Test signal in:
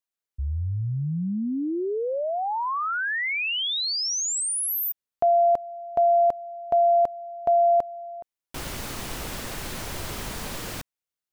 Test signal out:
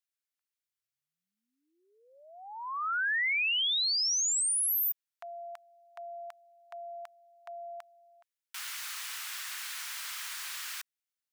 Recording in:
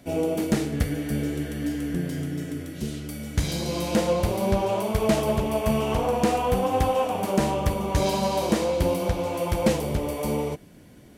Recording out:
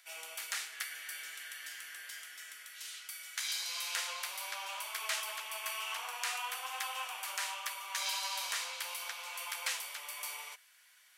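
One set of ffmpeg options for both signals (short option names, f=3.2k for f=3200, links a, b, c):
-af "highpass=f=1.3k:w=0.5412,highpass=f=1.3k:w=1.3066,volume=-2dB"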